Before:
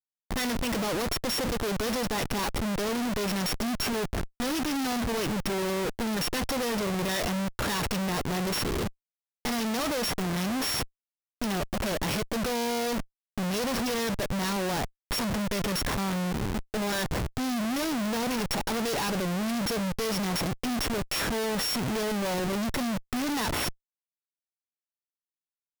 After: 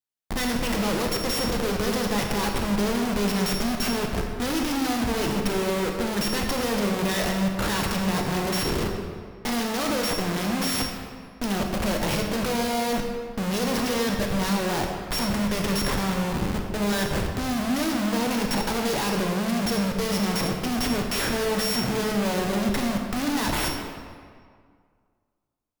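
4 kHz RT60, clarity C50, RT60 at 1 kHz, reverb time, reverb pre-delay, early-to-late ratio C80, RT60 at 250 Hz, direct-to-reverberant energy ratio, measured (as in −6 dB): 1.3 s, 3.5 dB, 2.0 s, 2.0 s, 22 ms, 4.5 dB, 2.1 s, 2.0 dB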